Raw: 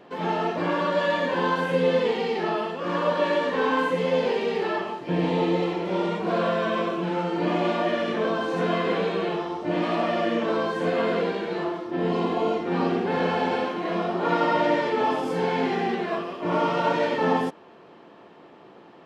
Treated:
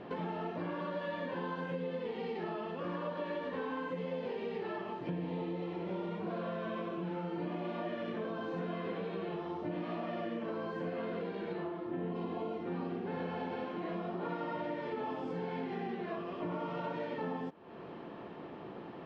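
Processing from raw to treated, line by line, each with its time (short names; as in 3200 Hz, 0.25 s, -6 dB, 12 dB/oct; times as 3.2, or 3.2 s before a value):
10.37–11 notch 3600 Hz
11.53–12.14 LPF 4700 Hz -> 3100 Hz
whole clip: LPF 3800 Hz 12 dB/oct; low shelf 240 Hz +9.5 dB; compressor 6:1, threshold -37 dBFS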